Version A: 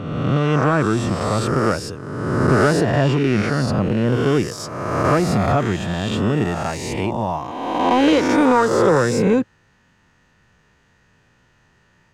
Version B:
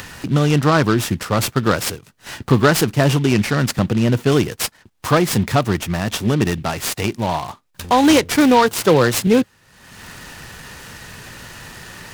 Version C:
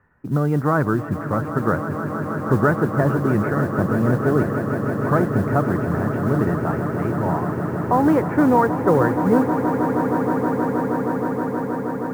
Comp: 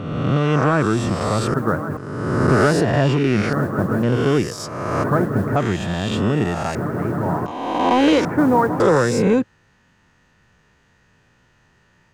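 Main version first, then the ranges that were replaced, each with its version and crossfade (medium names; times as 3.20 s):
A
1.54–1.97 s: from C
3.53–4.03 s: from C
5.04–5.56 s: from C
6.75–7.46 s: from C
8.25–8.80 s: from C
not used: B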